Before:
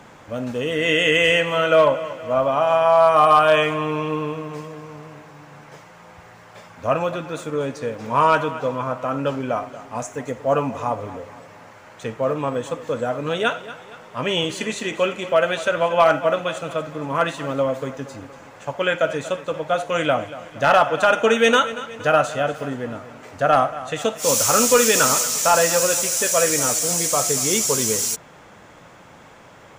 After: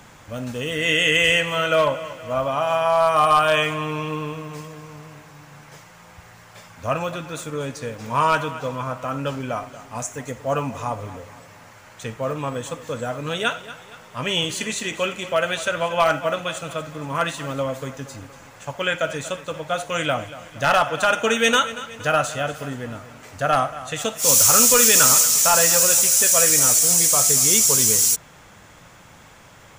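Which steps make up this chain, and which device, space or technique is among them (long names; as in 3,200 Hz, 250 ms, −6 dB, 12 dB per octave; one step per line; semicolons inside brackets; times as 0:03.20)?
smiley-face EQ (low-shelf EQ 110 Hz +7 dB; parametric band 420 Hz −5.5 dB 2.6 octaves; high-shelf EQ 6,000 Hz +9 dB)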